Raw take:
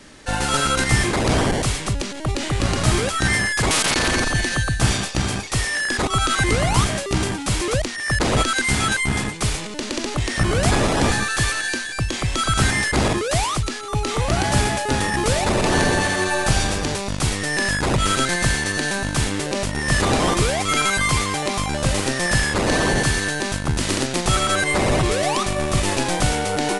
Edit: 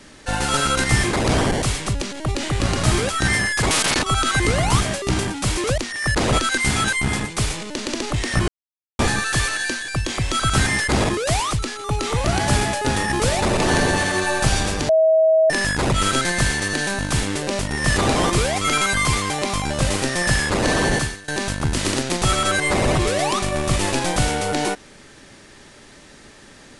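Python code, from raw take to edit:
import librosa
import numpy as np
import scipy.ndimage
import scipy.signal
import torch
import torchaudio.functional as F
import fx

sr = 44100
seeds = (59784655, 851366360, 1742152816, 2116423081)

y = fx.edit(x, sr, fx.cut(start_s=4.02, length_s=2.04),
    fx.silence(start_s=10.52, length_s=0.51),
    fx.bleep(start_s=16.93, length_s=0.61, hz=640.0, db=-11.5),
    fx.fade_out_to(start_s=23.01, length_s=0.31, curve='qua', floor_db=-20.5), tone=tone)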